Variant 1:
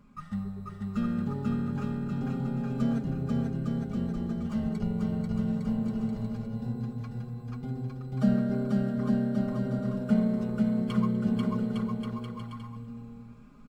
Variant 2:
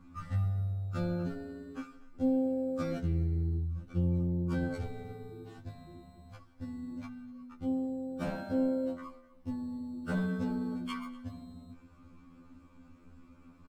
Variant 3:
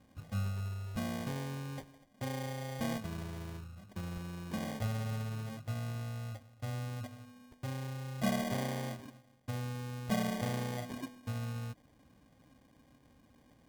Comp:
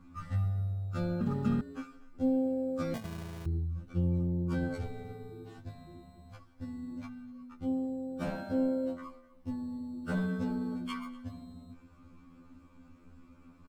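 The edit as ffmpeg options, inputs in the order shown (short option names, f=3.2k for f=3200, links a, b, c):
-filter_complex "[1:a]asplit=3[a][b][c];[a]atrim=end=1.212[d];[0:a]atrim=start=1.208:end=1.612[e];[b]atrim=start=1.608:end=2.942[f];[2:a]atrim=start=2.938:end=3.462[g];[c]atrim=start=3.458[h];[d][e]acrossfade=d=0.004:c1=hsin:c2=hsin[i];[i][f]acrossfade=d=0.004:c1=hsin:c2=hsin[j];[j][g]acrossfade=d=0.004:c1=hsin:c2=hsin[k];[k][h]acrossfade=d=0.004:c1=hsin:c2=hsin"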